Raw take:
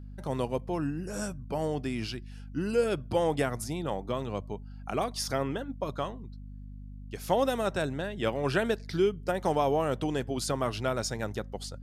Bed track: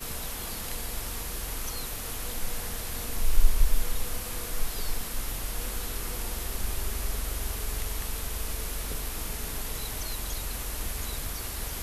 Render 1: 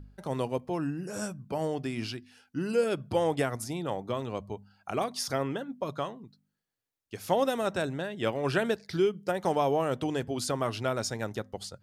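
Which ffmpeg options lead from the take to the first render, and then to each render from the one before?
-af "bandreject=f=50:t=h:w=4,bandreject=f=100:t=h:w=4,bandreject=f=150:t=h:w=4,bandreject=f=200:t=h:w=4,bandreject=f=250:t=h:w=4"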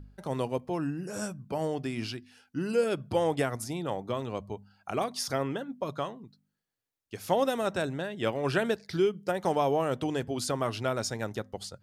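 -af anull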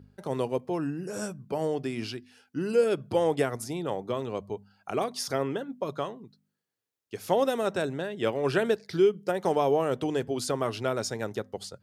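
-af "highpass=94,equalizer=f=420:t=o:w=0.55:g=5"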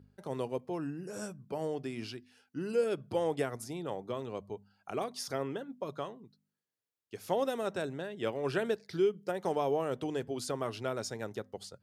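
-af "volume=-6.5dB"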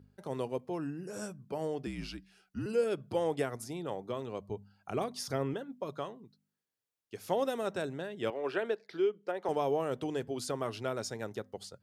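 -filter_complex "[0:a]asettb=1/sr,asplit=3[a][b][c];[a]atrim=end=1.864[d];[b]atrim=start=1.86:end=2.66,asetpts=PTS-STARTPTS,afade=t=in:d=0.004:c=qsin,afade=t=out:st=0.796:d=0.004:c=qsin,afreqshift=-59[e];[c]atrim=start=2.656[f];[d][e]acrossfade=d=0.004:c1=hsin:c2=qsin[g];[g][f]acrossfade=d=0.004:c1=qsin:c2=hsin,asettb=1/sr,asplit=3[h][i][j];[h]atrim=end=4.494[k];[i]atrim=start=4.49:end=5.54,asetpts=PTS-STARTPTS,afade=t=in:d=0.004:c=qsin,afade=t=out:st=1.046:d=0.004:c=qsin,lowshelf=f=170:g=11[l];[j]atrim=start=5.536[m];[k][l]acrossfade=d=0.004:c1=hsin:c2=qsin[n];[n][m]acrossfade=d=0.004:c1=qsin:c2=hsin,asettb=1/sr,asplit=3[o][p][q];[o]atrim=end=8.304[r];[p]atrim=start=8.3:end=9.49,asetpts=PTS-STARTPTS,afade=t=in:d=0.004:c=qsin,afade=t=out:st=1.186:d=0.004:c=qsin,acrossover=split=260 3800:gain=0.0891 1 0.224[s][t][u];[s][t][u]amix=inputs=3:normalize=0[v];[q]atrim=start=9.486[w];[r][v]acrossfade=d=0.004:c1=hsin:c2=qsin[x];[x][w]acrossfade=d=0.004:c1=qsin:c2=hsin"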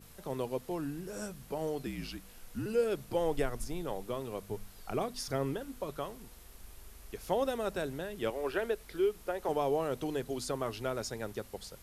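-filter_complex "[1:a]volume=-20.5dB[a];[0:a][a]amix=inputs=2:normalize=0"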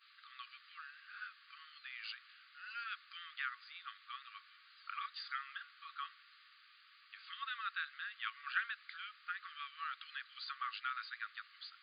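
-af "afftfilt=real='re*between(b*sr/4096,1100,4900)':imag='im*between(b*sr/4096,1100,4900)':win_size=4096:overlap=0.75,adynamicequalizer=threshold=0.00141:dfrequency=1600:dqfactor=1.7:tfrequency=1600:tqfactor=1.7:attack=5:release=100:ratio=0.375:range=2:mode=boostabove:tftype=bell"

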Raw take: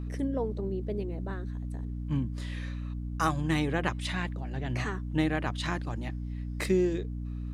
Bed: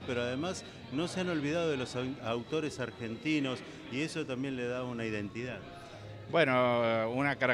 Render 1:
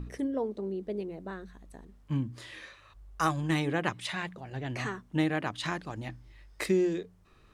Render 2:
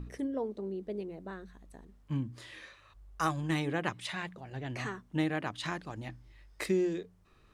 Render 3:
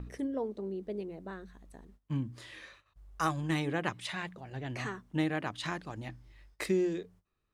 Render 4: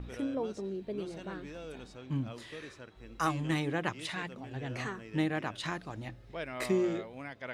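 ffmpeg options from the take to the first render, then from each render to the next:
-af "bandreject=f=60:t=h:w=4,bandreject=f=120:t=h:w=4,bandreject=f=180:t=h:w=4,bandreject=f=240:t=h:w=4,bandreject=f=300:t=h:w=4"
-af "volume=-3dB"
-af "agate=range=-19dB:threshold=-57dB:ratio=16:detection=peak"
-filter_complex "[1:a]volume=-13dB[a];[0:a][a]amix=inputs=2:normalize=0"

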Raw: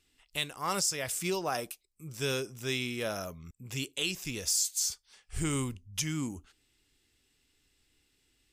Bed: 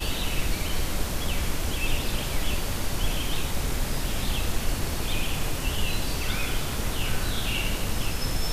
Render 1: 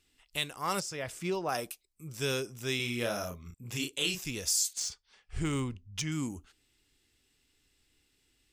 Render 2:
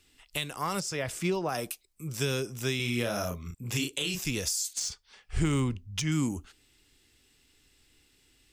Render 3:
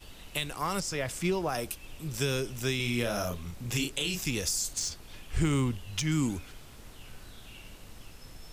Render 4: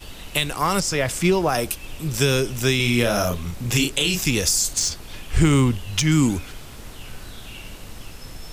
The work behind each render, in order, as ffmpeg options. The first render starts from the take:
-filter_complex "[0:a]asettb=1/sr,asplit=3[a][b][c];[a]atrim=end=0.804[d];[b]atrim=start=0.8:end=1.49,asetpts=PTS-STARTPTS,afade=t=in:d=0.004:c=qsin,afade=t=out:st=0.686:d=0.004:c=qsin,lowpass=f=2k:p=1[e];[c]atrim=start=1.486[f];[d][e]acrossfade=d=0.004:c1=hsin:c2=qsin[g];[g][f]acrossfade=d=0.004:c1=qsin:c2=hsin,asettb=1/sr,asplit=3[h][i][j];[h]atrim=end=2.764[k];[i]atrim=start=2.76:end=4.21,asetpts=PTS-STARTPTS,afade=t=in:d=0.004:c=qsin,afade=t=out:st=1.446:d=0.004:c=qsin,asplit=2[l][m];[m]adelay=34,volume=-4dB[n];[l][n]amix=inputs=2:normalize=0,atrim=end_sample=63945[o];[j]atrim=start=4.206[p];[k][o]acrossfade=d=0.004:c1=hsin:c2=qsin[q];[q][p]acrossfade=d=0.004:c1=qsin:c2=hsin,asettb=1/sr,asplit=3[r][s][t];[r]atrim=end=4.734[u];[s]atrim=start=4.73:end=6.12,asetpts=PTS-STARTPTS,afade=t=in:d=0.004:c=qsin,afade=t=out:st=1.386:d=0.004:c=qsin,adynamicsmooth=sensitivity=3:basefreq=4.7k[v];[t]atrim=start=6.116[w];[u][v]acrossfade=d=0.004:c1=hsin:c2=qsin[x];[x][w]acrossfade=d=0.004:c1=qsin:c2=hsin"
-filter_complex "[0:a]asplit=2[a][b];[b]alimiter=limit=-24dB:level=0:latency=1:release=83,volume=2dB[c];[a][c]amix=inputs=2:normalize=0,acrossover=split=230[d][e];[e]acompressor=threshold=-29dB:ratio=4[f];[d][f]amix=inputs=2:normalize=0"
-filter_complex "[1:a]volume=-21dB[a];[0:a][a]amix=inputs=2:normalize=0"
-af "volume=10.5dB"

